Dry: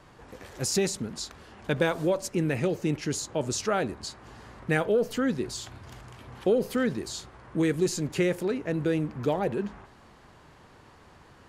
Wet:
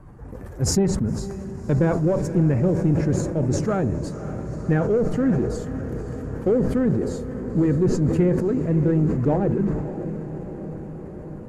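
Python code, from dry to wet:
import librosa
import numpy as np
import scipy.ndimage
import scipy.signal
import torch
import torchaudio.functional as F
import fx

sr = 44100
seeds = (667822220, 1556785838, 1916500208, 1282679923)

p1 = fx.spec_quant(x, sr, step_db=15)
p2 = fx.curve_eq(p1, sr, hz=(180.0, 1600.0, 3400.0, 13000.0), db=(0, -9, -24, -6))
p3 = np.clip(p2, -10.0 ** (-29.0 / 20.0), 10.0 ** (-29.0 / 20.0))
p4 = p2 + (p3 * 10.0 ** (-8.0 / 20.0))
p5 = fx.env_lowpass_down(p4, sr, base_hz=2000.0, full_db=-20.0)
p6 = fx.low_shelf(p5, sr, hz=140.0, db=9.5)
p7 = p6 + fx.echo_diffused(p6, sr, ms=547, feedback_pct=70, wet_db=-11, dry=0)
p8 = fx.sustainer(p7, sr, db_per_s=42.0)
y = p8 * 10.0 ** (4.0 / 20.0)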